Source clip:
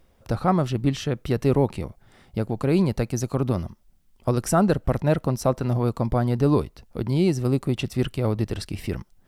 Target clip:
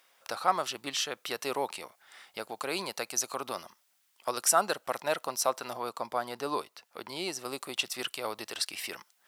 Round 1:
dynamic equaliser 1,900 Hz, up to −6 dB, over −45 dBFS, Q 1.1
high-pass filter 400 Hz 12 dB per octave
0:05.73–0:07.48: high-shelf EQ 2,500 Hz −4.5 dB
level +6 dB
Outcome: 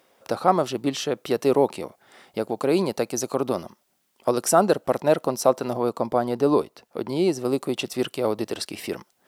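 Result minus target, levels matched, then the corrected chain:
500 Hz band +5.0 dB
dynamic equaliser 1,900 Hz, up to −6 dB, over −45 dBFS, Q 1.1
high-pass filter 1,200 Hz 12 dB per octave
0:05.73–0:07.48: high-shelf EQ 2,500 Hz −4.5 dB
level +6 dB

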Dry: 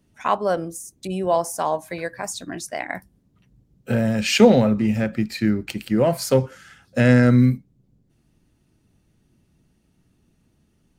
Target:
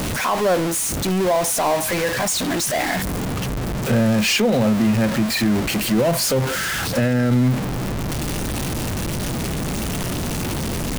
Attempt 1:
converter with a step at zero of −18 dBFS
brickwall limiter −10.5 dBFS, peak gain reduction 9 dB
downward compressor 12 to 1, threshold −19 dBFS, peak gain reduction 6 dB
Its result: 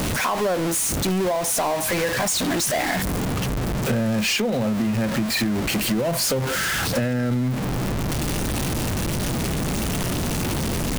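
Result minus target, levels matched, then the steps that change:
downward compressor: peak gain reduction +6 dB
remove: downward compressor 12 to 1, threshold −19 dBFS, peak gain reduction 6 dB

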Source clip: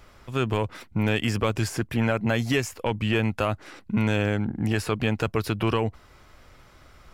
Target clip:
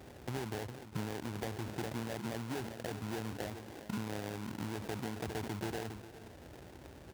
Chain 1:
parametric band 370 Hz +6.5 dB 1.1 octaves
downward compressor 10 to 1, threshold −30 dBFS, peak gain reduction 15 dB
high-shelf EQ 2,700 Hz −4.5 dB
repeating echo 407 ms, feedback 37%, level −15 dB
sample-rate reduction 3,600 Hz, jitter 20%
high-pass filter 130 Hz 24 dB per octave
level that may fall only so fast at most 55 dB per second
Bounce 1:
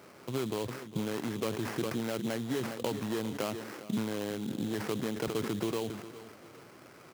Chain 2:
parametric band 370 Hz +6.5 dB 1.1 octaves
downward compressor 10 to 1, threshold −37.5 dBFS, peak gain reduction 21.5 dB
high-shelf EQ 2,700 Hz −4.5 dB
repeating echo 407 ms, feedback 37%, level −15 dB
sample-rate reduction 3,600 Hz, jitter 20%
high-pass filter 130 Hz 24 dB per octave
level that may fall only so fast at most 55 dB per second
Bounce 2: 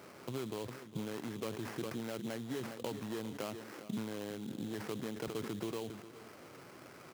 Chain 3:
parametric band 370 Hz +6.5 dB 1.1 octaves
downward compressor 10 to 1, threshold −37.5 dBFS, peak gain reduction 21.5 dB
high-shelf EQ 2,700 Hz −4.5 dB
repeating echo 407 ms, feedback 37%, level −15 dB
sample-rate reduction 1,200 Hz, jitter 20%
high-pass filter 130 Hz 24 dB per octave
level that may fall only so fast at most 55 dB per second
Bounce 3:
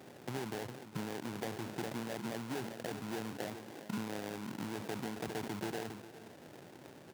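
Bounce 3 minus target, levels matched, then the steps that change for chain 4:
125 Hz band −4.0 dB
change: high-pass filter 59 Hz 24 dB per octave

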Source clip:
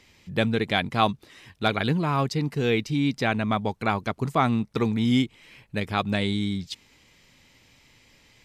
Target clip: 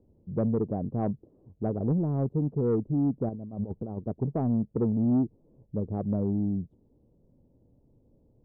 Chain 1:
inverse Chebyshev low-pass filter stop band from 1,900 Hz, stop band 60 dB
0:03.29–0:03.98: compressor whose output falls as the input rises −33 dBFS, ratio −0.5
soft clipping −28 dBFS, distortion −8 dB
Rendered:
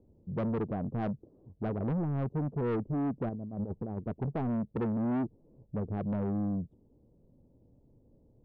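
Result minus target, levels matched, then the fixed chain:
soft clipping: distortion +11 dB
inverse Chebyshev low-pass filter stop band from 1,900 Hz, stop band 60 dB
0:03.29–0:03.98: compressor whose output falls as the input rises −33 dBFS, ratio −0.5
soft clipping −18 dBFS, distortion −19 dB

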